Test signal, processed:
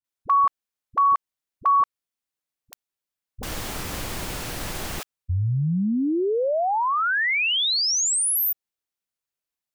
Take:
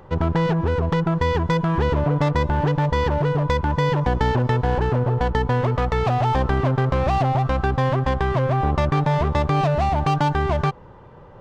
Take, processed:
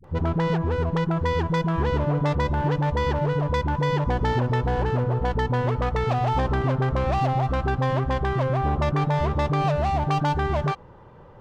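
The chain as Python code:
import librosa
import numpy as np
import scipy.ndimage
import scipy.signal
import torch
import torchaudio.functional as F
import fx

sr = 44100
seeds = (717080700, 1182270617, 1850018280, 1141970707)

y = fx.dispersion(x, sr, late='highs', ms=43.0, hz=360.0)
y = F.gain(torch.from_numpy(y), -3.0).numpy()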